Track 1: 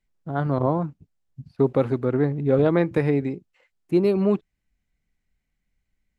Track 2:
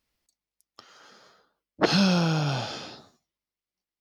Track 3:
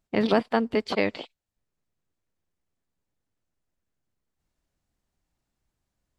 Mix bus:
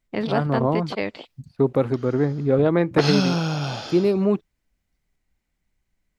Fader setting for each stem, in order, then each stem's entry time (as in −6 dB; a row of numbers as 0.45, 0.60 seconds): +0.5, +0.5, −2.0 decibels; 0.00, 1.15, 0.00 seconds